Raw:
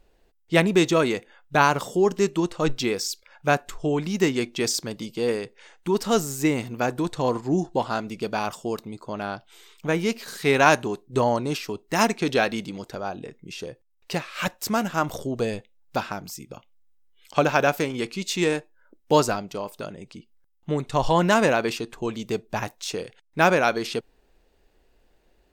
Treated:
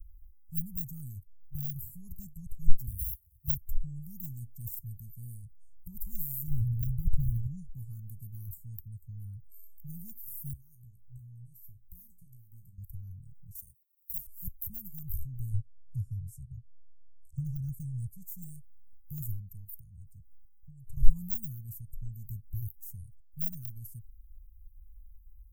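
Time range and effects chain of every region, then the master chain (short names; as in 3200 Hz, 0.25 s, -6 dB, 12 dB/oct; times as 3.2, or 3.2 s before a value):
2.87–3.58 minimum comb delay 0.45 ms + HPF 62 Hz + high shelf 7800 Hz +6.5 dB
6.47–7.47 LPF 1000 Hz 6 dB/oct + sample leveller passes 3
10.53–12.78 compressor 2.5:1, threshold -36 dBFS + resonator 59 Hz, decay 0.21 s, mix 90%
13.55–14.27 HPF 370 Hz + high shelf 2800 Hz +10.5 dB + sample leveller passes 1
15.53–18.07 steep low-pass 10000 Hz + bell 120 Hz +8.5 dB 1 oct
19.64–20.97 compressor 3:1, threshold -39 dBFS + bell 5200 Hz +3.5 dB 2.4 oct
whole clip: de-esser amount 55%; inverse Chebyshev band-stop 330–4200 Hz, stop band 70 dB; high shelf 5200 Hz -4 dB; gain +13.5 dB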